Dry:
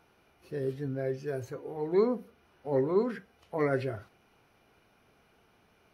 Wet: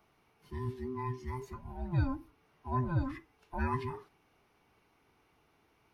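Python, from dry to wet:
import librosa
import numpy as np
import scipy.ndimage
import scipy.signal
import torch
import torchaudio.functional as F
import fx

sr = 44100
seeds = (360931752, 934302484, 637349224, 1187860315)

y = fx.band_invert(x, sr, width_hz=500)
y = y * librosa.db_to_amplitude(-4.5)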